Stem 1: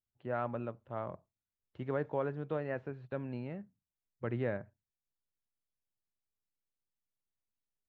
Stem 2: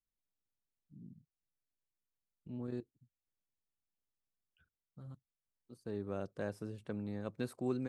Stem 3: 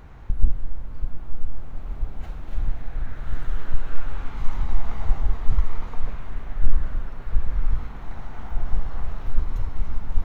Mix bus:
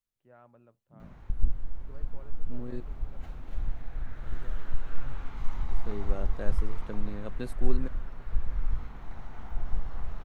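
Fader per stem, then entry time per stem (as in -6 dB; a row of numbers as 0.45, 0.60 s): -20.0, +1.5, -7.0 dB; 0.00, 0.00, 1.00 s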